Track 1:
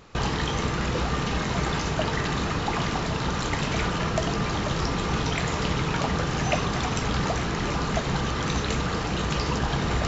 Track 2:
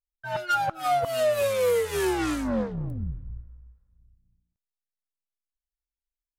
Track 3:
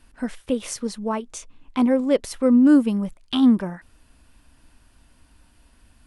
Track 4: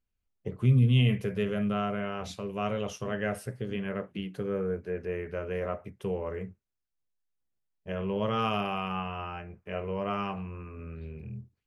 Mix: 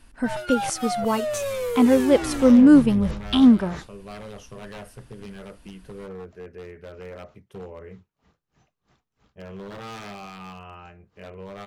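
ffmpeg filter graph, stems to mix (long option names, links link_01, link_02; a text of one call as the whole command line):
ffmpeg -i stem1.wav -i stem2.wav -i stem3.wav -i stem4.wav -filter_complex "[0:a]aeval=exprs='val(0)*pow(10,-30*(0.5-0.5*cos(2*PI*3.1*n/s))/20)':channel_layout=same,adelay=2150,volume=-10.5dB[link_01];[1:a]alimiter=limit=-22.5dB:level=0:latency=1:release=15,volume=1dB[link_02];[2:a]volume=2dB,asplit=2[link_03][link_04];[3:a]aeval=exprs='0.0473*(abs(mod(val(0)/0.0473+3,4)-2)-1)':channel_layout=same,adelay=1500,volume=-5.5dB[link_05];[link_04]apad=whole_len=539302[link_06];[link_01][link_06]sidechaingate=range=-25dB:threshold=-45dB:ratio=16:detection=peak[link_07];[link_07][link_02][link_03][link_05]amix=inputs=4:normalize=0" out.wav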